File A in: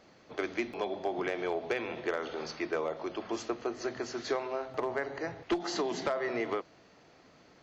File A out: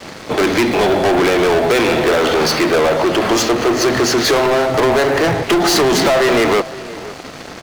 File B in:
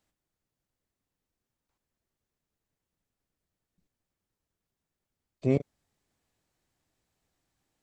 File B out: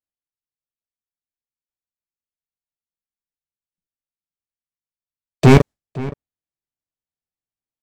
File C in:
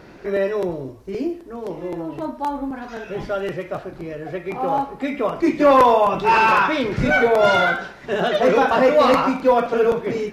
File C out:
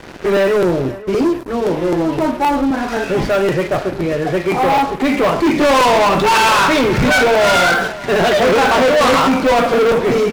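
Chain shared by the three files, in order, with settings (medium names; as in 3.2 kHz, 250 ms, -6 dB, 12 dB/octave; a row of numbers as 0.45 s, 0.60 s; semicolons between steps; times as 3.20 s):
gate with hold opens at -52 dBFS; waveshaping leveller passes 5; echo from a far wall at 89 m, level -17 dB; normalise loudness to -14 LUFS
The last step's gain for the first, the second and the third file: +12.0 dB, +9.5 dB, -4.5 dB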